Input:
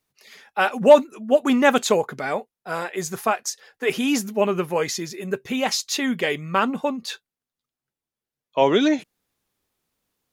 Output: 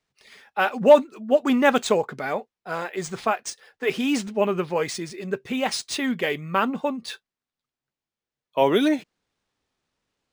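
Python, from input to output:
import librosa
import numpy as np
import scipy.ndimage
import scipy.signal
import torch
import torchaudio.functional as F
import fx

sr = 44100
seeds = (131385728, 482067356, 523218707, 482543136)

y = np.interp(np.arange(len(x)), np.arange(len(x))[::3], x[::3])
y = y * librosa.db_to_amplitude(-1.5)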